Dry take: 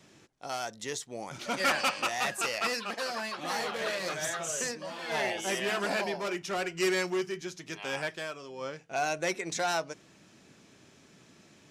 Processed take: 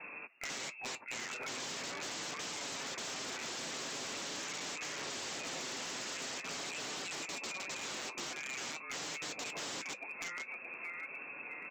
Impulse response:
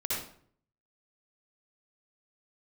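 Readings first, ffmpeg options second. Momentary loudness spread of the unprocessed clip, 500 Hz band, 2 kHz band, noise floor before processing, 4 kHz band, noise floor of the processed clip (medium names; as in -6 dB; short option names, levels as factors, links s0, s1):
11 LU, -14.5 dB, -7.5 dB, -59 dBFS, -4.0 dB, -49 dBFS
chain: -filter_complex "[0:a]asplit=2[s0][s1];[s1]adelay=625,lowpass=f=1500:p=1,volume=0.2,asplit=2[s2][s3];[s3]adelay=625,lowpass=f=1500:p=1,volume=0.41,asplit=2[s4][s5];[s5]adelay=625,lowpass=f=1500:p=1,volume=0.41,asplit=2[s6][s7];[s7]adelay=625,lowpass=f=1500:p=1,volume=0.41[s8];[s0][s2][s4][s6][s8]amix=inputs=5:normalize=0,lowpass=f=2400:t=q:w=0.5098,lowpass=f=2400:t=q:w=0.6013,lowpass=f=2400:t=q:w=0.9,lowpass=f=2400:t=q:w=2.563,afreqshift=-2800,alimiter=level_in=1.12:limit=0.0631:level=0:latency=1:release=143,volume=0.891,aresample=16000,aeval=exprs='(mod(70.8*val(0)+1,2)-1)/70.8':c=same,aresample=44100,highpass=250,flanger=delay=6.7:depth=1.3:regen=-53:speed=0.43:shape=triangular,acompressor=threshold=0.00158:ratio=6,lowshelf=f=410:g=11,aeval=exprs='clip(val(0),-1,0.00251)':c=same,volume=5.96"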